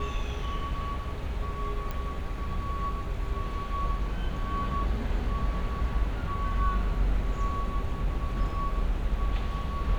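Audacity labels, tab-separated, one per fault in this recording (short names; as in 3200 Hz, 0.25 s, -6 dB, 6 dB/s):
1.910000	1.910000	pop -21 dBFS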